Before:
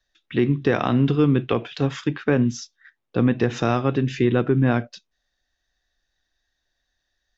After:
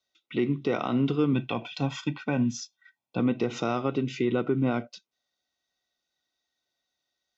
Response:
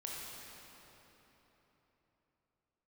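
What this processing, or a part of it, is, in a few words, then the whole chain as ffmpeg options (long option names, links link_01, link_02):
PA system with an anti-feedback notch: -filter_complex "[0:a]asettb=1/sr,asplit=3[link_01][link_02][link_03];[link_01]atrim=end=1.334[link_04];[link_02]atrim=start=1.33:end=3.2,asetpts=PTS-STARTPTS,afade=type=in:duration=0.004:curve=qsin,afade=type=out:start_time=1.866:duration=0.004:curve=qsin,aecho=1:1:1.2:0.67,atrim=end_sample=82467[link_05];[link_03]atrim=start=3.196[link_06];[link_04][link_05]acrossfade=duration=0.004:curve1=hsin:curve2=qsin[link_07];[link_07][link_06]acrossfade=duration=0.004:curve1=qsin:curve2=hsin,highpass=170,asuperstop=centerf=1700:order=20:qfactor=5.4,alimiter=limit=-11.5dB:level=0:latency=1:release=87,volume=-4dB"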